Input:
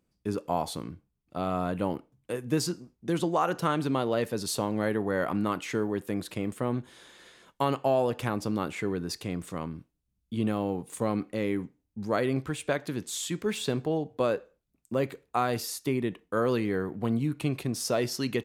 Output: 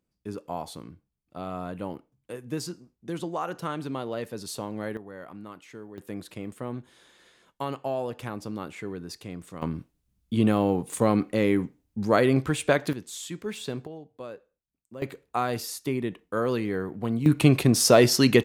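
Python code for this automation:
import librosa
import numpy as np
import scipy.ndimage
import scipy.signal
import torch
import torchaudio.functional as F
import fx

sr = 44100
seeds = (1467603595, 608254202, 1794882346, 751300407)

y = fx.gain(x, sr, db=fx.steps((0.0, -5.0), (4.97, -14.0), (5.98, -5.0), (9.62, 6.5), (12.93, -4.0), (13.87, -13.0), (15.02, 0.0), (17.26, 11.0)))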